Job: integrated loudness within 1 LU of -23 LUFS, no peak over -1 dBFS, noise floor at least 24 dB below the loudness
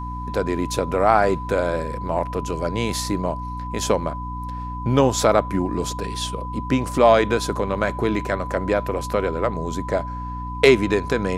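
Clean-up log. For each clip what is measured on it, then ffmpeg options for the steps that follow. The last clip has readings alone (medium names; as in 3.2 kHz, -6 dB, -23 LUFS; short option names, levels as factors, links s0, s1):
hum 60 Hz; highest harmonic 300 Hz; hum level -29 dBFS; steady tone 1 kHz; tone level -31 dBFS; loudness -22.0 LUFS; peak level -2.0 dBFS; loudness target -23.0 LUFS
-> -af "bandreject=f=60:t=h:w=6,bandreject=f=120:t=h:w=6,bandreject=f=180:t=h:w=6,bandreject=f=240:t=h:w=6,bandreject=f=300:t=h:w=6"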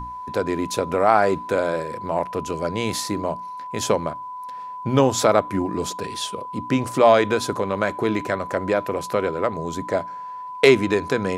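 hum not found; steady tone 1 kHz; tone level -31 dBFS
-> -af "bandreject=f=1000:w=30"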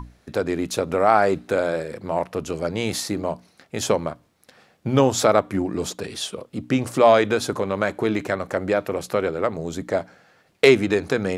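steady tone not found; loudness -22.0 LUFS; peak level -2.5 dBFS; loudness target -23.0 LUFS
-> -af "volume=0.891"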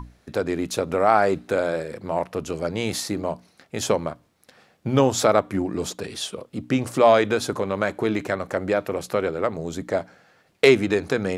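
loudness -23.0 LUFS; peak level -3.5 dBFS; noise floor -62 dBFS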